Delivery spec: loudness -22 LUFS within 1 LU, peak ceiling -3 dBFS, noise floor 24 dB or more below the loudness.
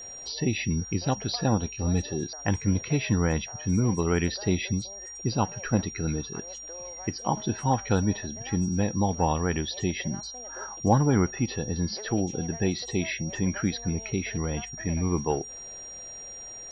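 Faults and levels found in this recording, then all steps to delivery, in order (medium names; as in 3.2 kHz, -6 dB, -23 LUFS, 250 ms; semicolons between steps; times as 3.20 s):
steady tone 5.7 kHz; tone level -39 dBFS; loudness -28.0 LUFS; peak level -9.5 dBFS; loudness target -22.0 LUFS
-> band-stop 5.7 kHz, Q 30; trim +6 dB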